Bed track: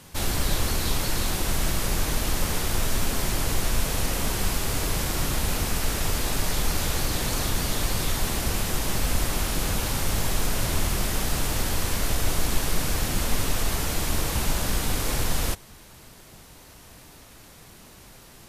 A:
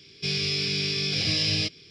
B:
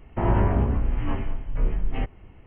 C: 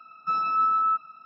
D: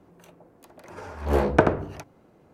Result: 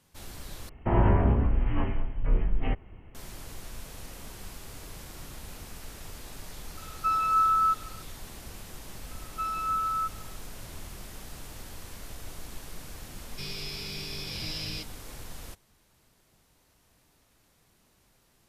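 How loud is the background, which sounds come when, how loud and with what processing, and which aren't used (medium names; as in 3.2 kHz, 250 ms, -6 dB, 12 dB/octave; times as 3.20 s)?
bed track -17.5 dB
0.69 s: replace with B -1 dB
6.77 s: add C -5 dB + peaking EQ 1.2 kHz +4.5 dB 2.6 oct
9.11 s: add C -6.5 dB
13.15 s: add A -11.5 dB
not used: D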